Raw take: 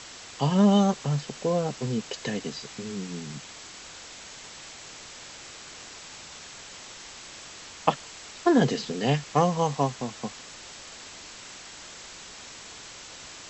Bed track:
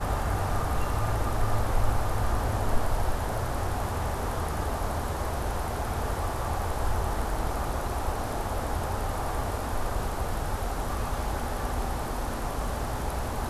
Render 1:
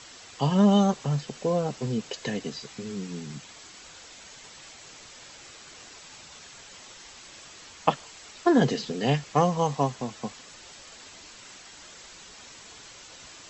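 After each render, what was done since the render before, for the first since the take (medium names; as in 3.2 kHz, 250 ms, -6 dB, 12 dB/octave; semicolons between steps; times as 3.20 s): noise reduction 6 dB, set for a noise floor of -45 dBFS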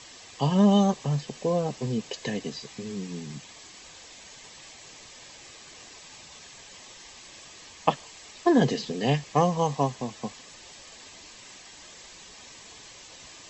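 band-stop 1.4 kHz, Q 5.8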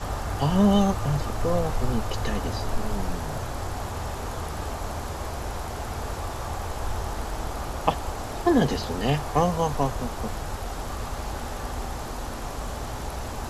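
add bed track -2 dB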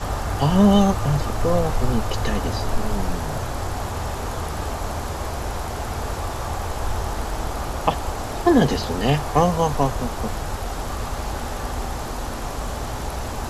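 trim +4.5 dB; peak limiter -3 dBFS, peak gain reduction 2.5 dB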